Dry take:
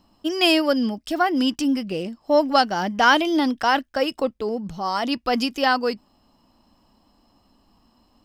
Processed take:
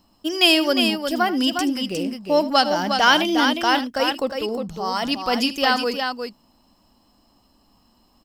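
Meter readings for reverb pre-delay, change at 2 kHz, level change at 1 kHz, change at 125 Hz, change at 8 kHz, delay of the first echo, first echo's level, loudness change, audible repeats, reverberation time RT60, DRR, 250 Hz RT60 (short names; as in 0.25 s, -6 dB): none, +2.0 dB, +0.5 dB, 0.0 dB, +5.5 dB, 79 ms, -15.5 dB, +1.5 dB, 2, none, none, none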